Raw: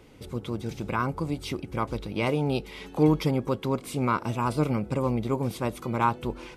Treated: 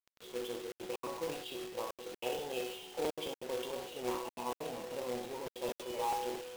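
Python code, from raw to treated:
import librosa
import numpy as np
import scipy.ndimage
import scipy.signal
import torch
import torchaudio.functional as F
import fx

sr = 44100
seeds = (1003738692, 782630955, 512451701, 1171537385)

p1 = fx.spec_quant(x, sr, step_db=15)
p2 = scipy.signal.sosfilt(scipy.signal.cheby1(2, 1.0, [890.0, 2800.0], 'bandstop', fs=sr, output='sos'), p1)
p3 = fx.air_absorb(p2, sr, metres=68.0)
p4 = fx.resonator_bank(p3, sr, root=47, chord='sus4', decay_s=0.27)
p5 = fx.echo_feedback(p4, sr, ms=62, feedback_pct=46, wet_db=-7.5)
p6 = fx.step_gate(p5, sr, bpm=189, pattern='xxxxxxxxx.xx.xx', floor_db=-60.0, edge_ms=4.5)
p7 = fx.level_steps(p6, sr, step_db=12)
p8 = p6 + (p7 * 10.0 ** (-2.5 / 20.0))
p9 = fx.cabinet(p8, sr, low_hz=450.0, low_slope=12, high_hz=4200.0, hz=(480.0, 2000.0, 3000.0), db=(8, -6, 9))
p10 = fx.quant_companded(p9, sr, bits=4)
p11 = fx.buffer_crackle(p10, sr, first_s=0.84, period_s=0.22, block=256, kind='repeat')
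p12 = fx.sustainer(p11, sr, db_per_s=63.0)
y = p12 * 10.0 ** (2.0 / 20.0)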